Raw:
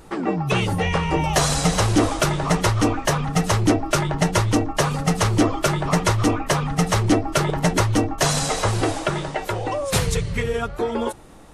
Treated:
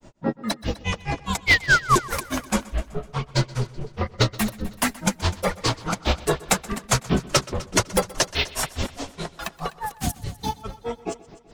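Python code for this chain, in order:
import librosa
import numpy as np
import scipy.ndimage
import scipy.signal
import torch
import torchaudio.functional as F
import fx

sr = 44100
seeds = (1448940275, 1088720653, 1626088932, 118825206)

y = fx.dynamic_eq(x, sr, hz=5500.0, q=0.81, threshold_db=-40.0, ratio=4.0, max_db=8)
y = fx.spec_paint(y, sr, seeds[0], shape='fall', start_s=1.46, length_s=0.5, low_hz=860.0, high_hz=4300.0, level_db=-13.0)
y = fx.granulator(y, sr, seeds[1], grain_ms=131.0, per_s=4.8, spray_ms=11.0, spread_st=12)
y = np.clip(10.0 ** (9.0 / 20.0) * y, -1.0, 1.0) / 10.0 ** (9.0 / 20.0)
y = fx.echo_heads(y, sr, ms=126, heads='first and second', feedback_pct=41, wet_db=-20.5)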